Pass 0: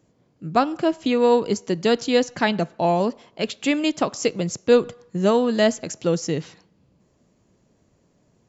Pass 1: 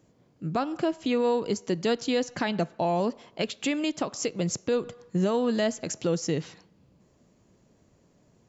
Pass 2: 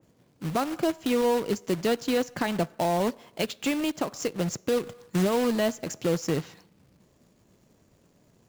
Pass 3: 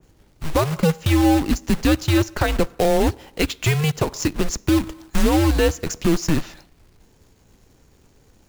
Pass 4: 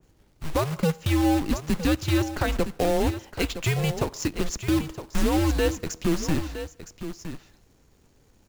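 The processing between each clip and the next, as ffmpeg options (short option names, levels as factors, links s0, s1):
-af "alimiter=limit=0.141:level=0:latency=1:release=285"
-af "acrusher=bits=2:mode=log:mix=0:aa=0.000001,adynamicequalizer=threshold=0.00708:dfrequency=2400:dqfactor=0.7:tfrequency=2400:tqfactor=0.7:attack=5:release=100:ratio=0.375:range=2.5:mode=cutabove:tftype=highshelf"
-af "afreqshift=-160,volume=2.51"
-af "aecho=1:1:964:0.282,volume=0.531"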